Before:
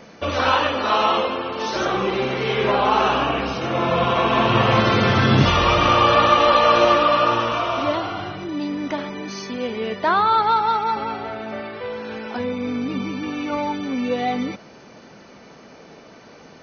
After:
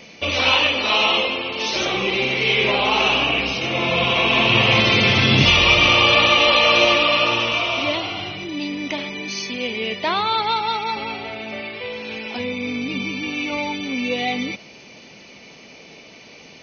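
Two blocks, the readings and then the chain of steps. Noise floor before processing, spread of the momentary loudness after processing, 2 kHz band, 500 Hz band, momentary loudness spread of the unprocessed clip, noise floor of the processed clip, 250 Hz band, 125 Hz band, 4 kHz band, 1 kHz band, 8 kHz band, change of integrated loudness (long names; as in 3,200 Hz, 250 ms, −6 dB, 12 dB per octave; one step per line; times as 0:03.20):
−45 dBFS, 15 LU, +7.0 dB, −2.0 dB, 15 LU, −44 dBFS, −1.5 dB, −1.5 dB, +9.0 dB, −4.5 dB, can't be measured, +2.0 dB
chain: high shelf with overshoot 1,900 Hz +7 dB, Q 3
level −1.5 dB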